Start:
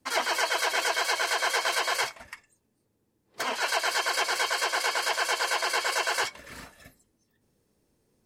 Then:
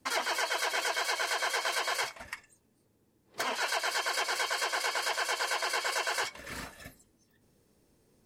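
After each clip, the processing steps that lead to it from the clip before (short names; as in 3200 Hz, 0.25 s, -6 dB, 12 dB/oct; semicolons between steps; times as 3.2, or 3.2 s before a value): compressor 2:1, threshold -38 dBFS, peak gain reduction 9 dB; gain +3.5 dB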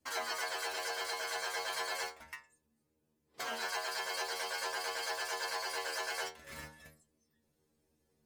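in parallel at -6.5 dB: requantised 6-bit, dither none; on the sum: metallic resonator 75 Hz, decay 0.41 s, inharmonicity 0.002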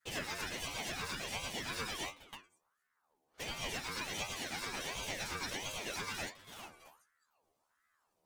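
chorus voices 2, 0.48 Hz, delay 12 ms, depth 2.2 ms; ring modulator with a swept carrier 1100 Hz, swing 50%, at 1.4 Hz; gain +3.5 dB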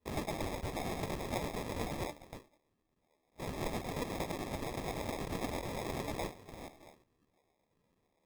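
sample-and-hold 30×; gain +2.5 dB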